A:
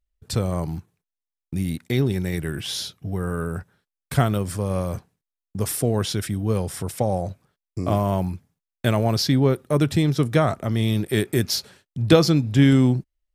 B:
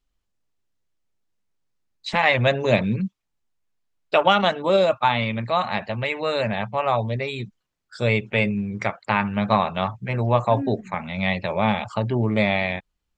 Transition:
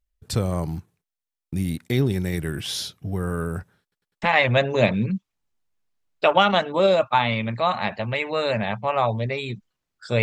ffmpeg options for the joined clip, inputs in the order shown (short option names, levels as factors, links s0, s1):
-filter_complex "[0:a]apad=whole_dur=10.22,atrim=end=10.22,asplit=4[s0][s1][s2][s3];[s0]atrim=end=3.922[s4];[s1]atrim=start=3.818:end=3.922[s5];[s2]atrim=start=3.818:end=3.922[s6];[s3]atrim=start=3.818:end=3.922[s7];[1:a]atrim=start=2.118:end=8.12[s8];[s4][s5]acrossfade=d=0.004:c1=hsin:c2=hsin[s9];[s9][s6]acrossfade=d=0.004:c1=hsin:c2=hsin[s10];[s10][s7]acrossfade=d=0.004:c1=hsin:c2=hsin[s11];[s11][s8]acrossfade=d=0.004:c1=hsin:c2=hsin"